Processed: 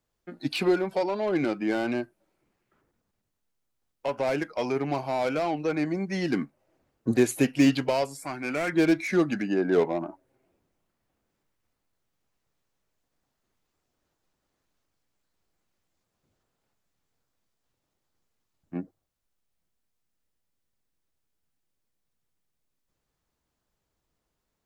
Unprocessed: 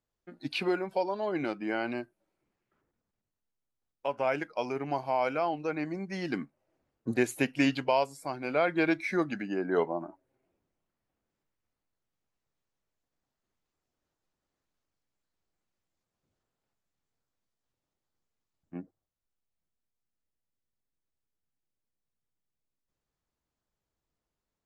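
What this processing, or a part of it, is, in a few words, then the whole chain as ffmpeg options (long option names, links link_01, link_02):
one-band saturation: -filter_complex "[0:a]acrossover=split=520|4200[link_01][link_02][link_03];[link_02]asoftclip=type=tanh:threshold=-37dB[link_04];[link_01][link_04][link_03]amix=inputs=3:normalize=0,asettb=1/sr,asplit=3[link_05][link_06][link_07];[link_05]atrim=end=8.224[link_08];[link_06]atrim=start=8.22:end=8.73,asetpts=PTS-STARTPTS,afade=type=in:duration=0.004:curve=qsin,afade=type=out:start_time=0.506:duration=0.004:curve=qsin,equalizer=frequency=125:width_type=o:width=1:gain=-5,equalizer=frequency=500:width_type=o:width=1:gain=-8,equalizer=frequency=2000:width_type=o:width=1:gain=6,equalizer=frequency=4000:width_type=o:width=1:gain=-7,equalizer=frequency=8000:width_type=o:width=1:gain=5[link_09];[link_07]atrim=start=8.726[link_10];[link_08][link_09]acrossfade=duration=0.004:curve1=hsin:curve2=qsin[link_11];[link_11][link_10]acrossfade=duration=0.004:curve1=qsin:curve2=hsin,volume=7dB"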